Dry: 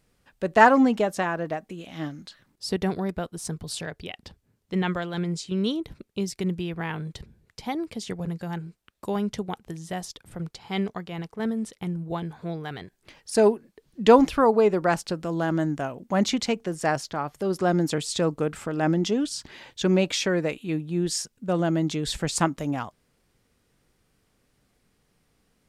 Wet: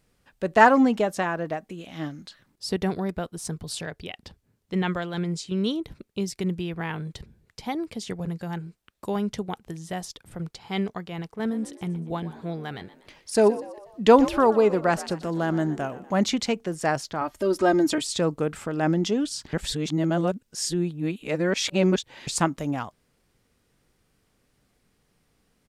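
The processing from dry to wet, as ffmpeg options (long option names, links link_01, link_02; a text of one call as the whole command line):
ffmpeg -i in.wav -filter_complex "[0:a]asplit=3[link_01][link_02][link_03];[link_01]afade=type=out:start_time=11.37:duration=0.02[link_04];[link_02]asplit=5[link_05][link_06][link_07][link_08][link_09];[link_06]adelay=121,afreqshift=61,volume=-16.5dB[link_10];[link_07]adelay=242,afreqshift=122,volume=-22.9dB[link_11];[link_08]adelay=363,afreqshift=183,volume=-29.3dB[link_12];[link_09]adelay=484,afreqshift=244,volume=-35.6dB[link_13];[link_05][link_10][link_11][link_12][link_13]amix=inputs=5:normalize=0,afade=type=in:start_time=11.37:duration=0.02,afade=type=out:start_time=16.1:duration=0.02[link_14];[link_03]afade=type=in:start_time=16.1:duration=0.02[link_15];[link_04][link_14][link_15]amix=inputs=3:normalize=0,asettb=1/sr,asplit=3[link_16][link_17][link_18];[link_16]atrim=end=17.214[link_19];[link_17]atrim=start=17.21:end=18.07,asetpts=PTS-STARTPTS,afade=type=in:duration=0.004:curve=qsin,afade=type=out:start_time=0.856:duration=0.004:curve=qsin,aecho=1:1:3.2:0.94,atrim=end_sample=37926[link_20];[link_18]atrim=start=18.066[link_21];[link_19][link_20]acrossfade=duration=0.004:curve1=hsin:curve2=qsin[link_22];[link_22][link_21]acrossfade=duration=0.004:curve1=qsin:curve2=hsin,asplit=3[link_23][link_24][link_25];[link_23]atrim=end=19.532[link_26];[link_24]atrim=start=19.528:end=22.272,asetpts=PTS-STARTPTS,areverse[link_27];[link_25]atrim=start=22.268[link_28];[link_26][link_27]acrossfade=duration=0.004:curve1=hsin:curve2=hsin[link_29];[link_29][link_28]acrossfade=duration=0.004:curve1=hsin:curve2=hsin" out.wav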